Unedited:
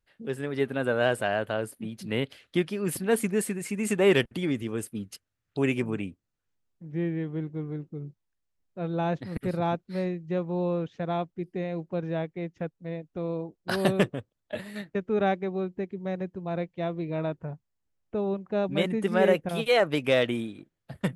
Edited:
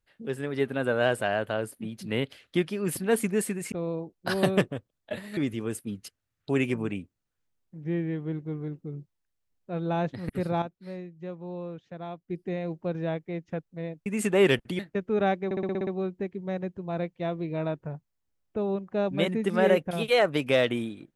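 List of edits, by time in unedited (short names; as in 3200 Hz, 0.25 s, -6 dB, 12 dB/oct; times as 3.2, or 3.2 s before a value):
3.72–4.45 swap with 13.14–14.79
9.7–11.38 gain -9 dB
15.45 stutter 0.06 s, 8 plays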